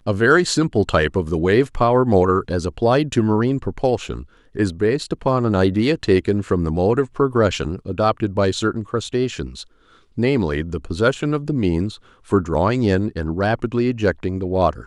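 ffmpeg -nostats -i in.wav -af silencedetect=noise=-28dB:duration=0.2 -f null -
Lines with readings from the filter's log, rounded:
silence_start: 4.22
silence_end: 4.55 | silence_duration: 0.33
silence_start: 9.62
silence_end: 10.18 | silence_duration: 0.55
silence_start: 11.95
silence_end: 12.31 | silence_duration: 0.37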